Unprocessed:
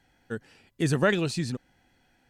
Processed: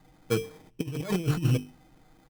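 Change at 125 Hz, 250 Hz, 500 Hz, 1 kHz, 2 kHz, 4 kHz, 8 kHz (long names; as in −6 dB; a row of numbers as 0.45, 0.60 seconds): +3.0, −1.5, −3.5, −6.0, −10.0, −3.5, −2.5 decibels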